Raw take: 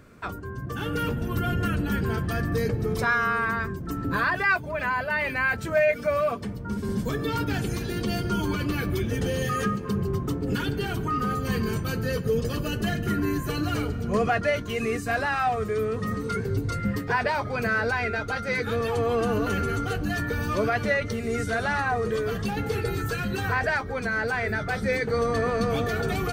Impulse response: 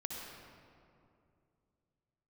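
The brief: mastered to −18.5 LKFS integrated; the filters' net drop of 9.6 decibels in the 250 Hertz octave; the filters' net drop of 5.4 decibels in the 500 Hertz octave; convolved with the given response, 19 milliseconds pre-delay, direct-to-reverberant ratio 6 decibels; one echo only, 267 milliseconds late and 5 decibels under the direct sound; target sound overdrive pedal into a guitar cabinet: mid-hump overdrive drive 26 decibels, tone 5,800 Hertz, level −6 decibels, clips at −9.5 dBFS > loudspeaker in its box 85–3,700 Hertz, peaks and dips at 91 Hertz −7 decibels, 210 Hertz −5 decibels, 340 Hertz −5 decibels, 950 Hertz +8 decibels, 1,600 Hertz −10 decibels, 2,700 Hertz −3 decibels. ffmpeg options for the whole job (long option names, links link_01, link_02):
-filter_complex "[0:a]equalizer=frequency=250:width_type=o:gain=-7.5,equalizer=frequency=500:width_type=o:gain=-4,aecho=1:1:267:0.562,asplit=2[link_01][link_02];[1:a]atrim=start_sample=2205,adelay=19[link_03];[link_02][link_03]afir=irnorm=-1:irlink=0,volume=-6dB[link_04];[link_01][link_04]amix=inputs=2:normalize=0,asplit=2[link_05][link_06];[link_06]highpass=frequency=720:poles=1,volume=26dB,asoftclip=type=tanh:threshold=-9.5dB[link_07];[link_05][link_07]amix=inputs=2:normalize=0,lowpass=frequency=5800:poles=1,volume=-6dB,highpass=85,equalizer=frequency=91:width_type=q:width=4:gain=-7,equalizer=frequency=210:width_type=q:width=4:gain=-5,equalizer=frequency=340:width_type=q:width=4:gain=-5,equalizer=frequency=950:width_type=q:width=4:gain=8,equalizer=frequency=1600:width_type=q:width=4:gain=-10,equalizer=frequency=2700:width_type=q:width=4:gain=-3,lowpass=frequency=3700:width=0.5412,lowpass=frequency=3700:width=1.3066"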